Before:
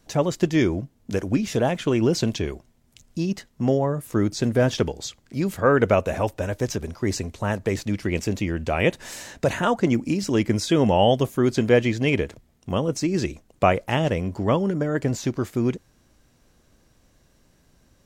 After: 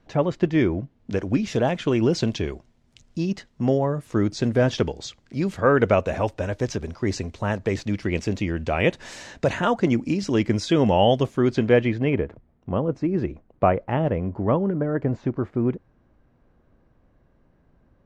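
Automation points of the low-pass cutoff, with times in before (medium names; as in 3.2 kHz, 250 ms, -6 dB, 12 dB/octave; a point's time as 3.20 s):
0.77 s 2.7 kHz
1.49 s 5.5 kHz
11.19 s 5.5 kHz
11.76 s 3.1 kHz
12.21 s 1.4 kHz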